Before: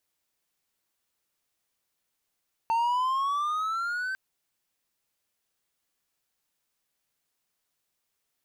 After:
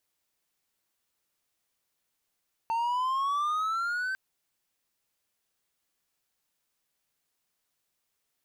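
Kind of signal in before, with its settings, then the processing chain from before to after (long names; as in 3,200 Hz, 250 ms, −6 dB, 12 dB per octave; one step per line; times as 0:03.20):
pitch glide with a swell triangle, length 1.45 s, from 899 Hz, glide +9.5 semitones, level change −7 dB, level −20 dB
brickwall limiter −24 dBFS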